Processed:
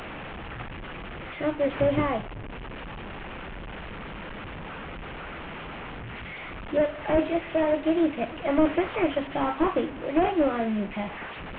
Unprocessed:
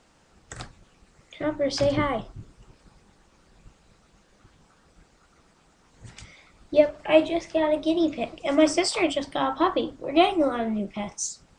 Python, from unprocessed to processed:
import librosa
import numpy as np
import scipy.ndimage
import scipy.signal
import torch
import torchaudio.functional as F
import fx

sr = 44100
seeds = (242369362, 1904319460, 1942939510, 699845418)

y = fx.delta_mod(x, sr, bps=16000, step_db=-31.5)